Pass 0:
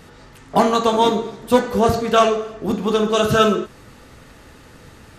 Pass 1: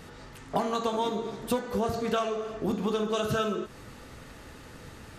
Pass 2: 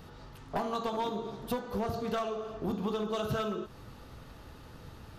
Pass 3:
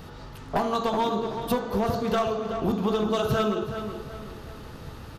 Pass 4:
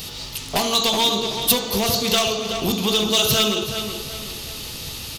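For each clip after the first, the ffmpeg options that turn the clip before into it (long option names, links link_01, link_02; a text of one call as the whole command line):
ffmpeg -i in.wav -af "acompressor=threshold=-23dB:ratio=6,volume=-2.5dB" out.wav
ffmpeg -i in.wav -af "equalizer=frequency=250:width_type=o:width=1:gain=-4,equalizer=frequency=500:width_type=o:width=1:gain=-4,equalizer=frequency=2000:width_type=o:width=1:gain=-9,equalizer=frequency=8000:width_type=o:width=1:gain=-12,aeval=exprs='clip(val(0),-1,0.0398)':channel_layout=same" out.wav
ffmpeg -i in.wav -filter_complex "[0:a]asplit=2[link_01][link_02];[link_02]adelay=375,lowpass=frequency=4200:poles=1,volume=-9dB,asplit=2[link_03][link_04];[link_04]adelay=375,lowpass=frequency=4200:poles=1,volume=0.41,asplit=2[link_05][link_06];[link_06]adelay=375,lowpass=frequency=4200:poles=1,volume=0.41,asplit=2[link_07][link_08];[link_08]adelay=375,lowpass=frequency=4200:poles=1,volume=0.41,asplit=2[link_09][link_10];[link_10]adelay=375,lowpass=frequency=4200:poles=1,volume=0.41[link_11];[link_01][link_03][link_05][link_07][link_09][link_11]amix=inputs=6:normalize=0,volume=7.5dB" out.wav
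ffmpeg -i in.wav -filter_complex "[0:a]aexciter=amount=7.6:drive=5.9:freq=2300,asplit=2[link_01][link_02];[link_02]aeval=exprs='0.126*(abs(mod(val(0)/0.126+3,4)-2)-1)':channel_layout=same,volume=-9dB[link_03];[link_01][link_03]amix=inputs=2:normalize=0" out.wav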